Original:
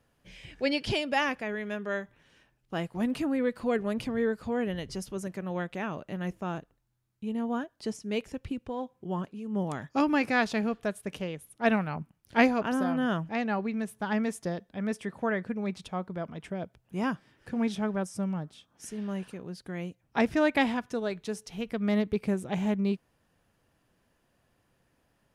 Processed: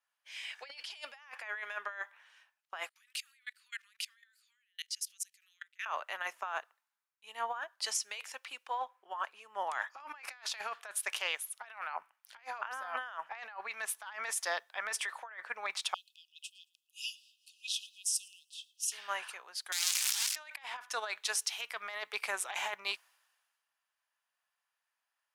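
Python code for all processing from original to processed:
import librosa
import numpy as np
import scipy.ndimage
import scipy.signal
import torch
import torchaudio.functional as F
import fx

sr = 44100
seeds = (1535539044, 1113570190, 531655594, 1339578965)

y = fx.chain(x, sr, fx.bessel_highpass(hz=2900.0, order=8),
    fx.level_steps(step_db=24), at=(2.89, 5.86))
y = fx.chain(y, sr, fx.brickwall_highpass(low_hz=2500.0),
    fx.echo_feedback(ms=112, feedback_pct=38, wet_db=-22.5), at=(15.94, 18.92))
y = fx.chain(y, sr, fx.clip_1bit(),
    fx.bandpass_q(hz=6700.0, q=0.84),
    fx.band_squash(depth_pct=40), at=(19.72, 20.36))
y = scipy.signal.sosfilt(scipy.signal.butter(4, 920.0, 'highpass', fs=sr, output='sos'), y)
y = fx.over_compress(y, sr, threshold_db=-45.0, ratio=-1.0)
y = fx.band_widen(y, sr, depth_pct=70)
y = F.gain(torch.from_numpy(y), 4.5).numpy()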